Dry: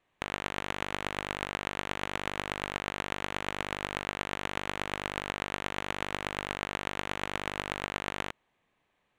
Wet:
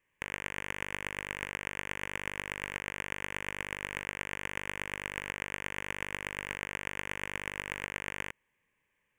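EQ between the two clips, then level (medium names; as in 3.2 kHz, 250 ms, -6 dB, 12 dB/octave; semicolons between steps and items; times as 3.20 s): resonant low shelf 430 Hz -7 dB, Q 1.5; peaking EQ 1.3 kHz -13.5 dB 0.45 oct; static phaser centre 1.7 kHz, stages 4; +3.5 dB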